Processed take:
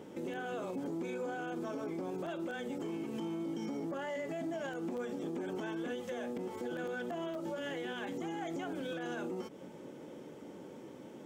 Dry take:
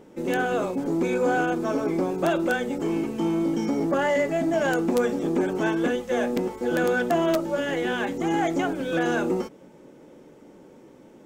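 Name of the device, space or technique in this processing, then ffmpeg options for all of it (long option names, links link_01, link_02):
broadcast voice chain: -af "highpass=frequency=73:width=0.5412,highpass=frequency=73:width=1.3066,deesser=0.7,acompressor=threshold=-32dB:ratio=6,equalizer=frequency=3200:width_type=o:width=0.21:gain=5,alimiter=level_in=7.5dB:limit=-24dB:level=0:latency=1:release=94,volume=-7.5dB"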